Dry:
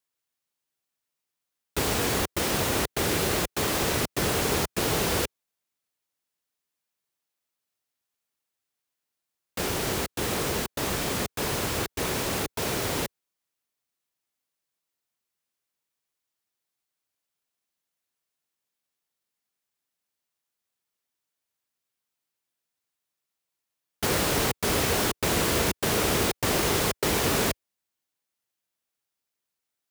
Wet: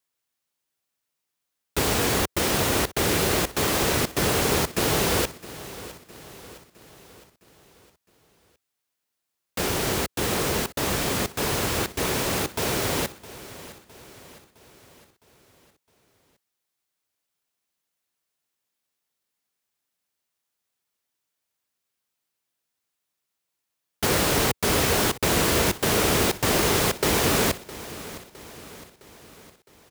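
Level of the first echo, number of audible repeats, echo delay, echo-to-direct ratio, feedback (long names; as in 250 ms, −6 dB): −17.0 dB, 4, 661 ms, −15.5 dB, 52%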